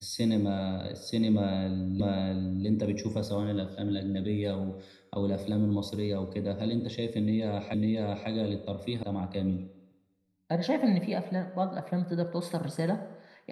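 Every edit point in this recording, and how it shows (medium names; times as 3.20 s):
2.00 s: repeat of the last 0.65 s
7.74 s: repeat of the last 0.55 s
9.03 s: sound stops dead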